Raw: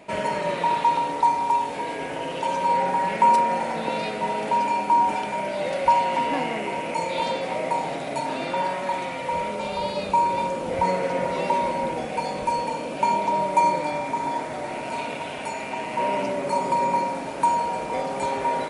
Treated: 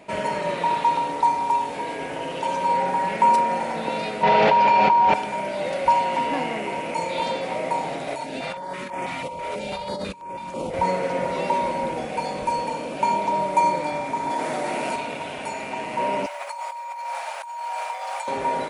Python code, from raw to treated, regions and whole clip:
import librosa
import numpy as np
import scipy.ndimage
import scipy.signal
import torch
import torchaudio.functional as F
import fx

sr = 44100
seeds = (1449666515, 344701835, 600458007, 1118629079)

y = fx.chain(x, sr, fx.lowpass(hz=4900.0, slope=24),
    fx.peak_eq(hz=270.0, db=-12.0, octaves=0.5),
    fx.env_flatten(amount_pct=100), at=(4.23, 5.14))
y = fx.chain(y, sr, fx.over_compress(threshold_db=-30.0, ratio=-1.0),
    fx.filter_held_notch(hz=6.1, low_hz=200.0, high_hz=4000.0), at=(8.08, 10.74))
y = fx.chain(y, sr, fx.highpass(hz=150.0, slope=24),
    fx.high_shelf(hz=8100.0, db=6.0),
    fx.env_flatten(amount_pct=70), at=(14.3, 14.96))
y = fx.chain(y, sr, fx.over_compress(threshold_db=-29.0, ratio=-1.0),
    fx.quant_companded(bits=8),
    fx.cheby2_highpass(hz=350.0, order=4, stop_db=40), at=(16.26, 18.28))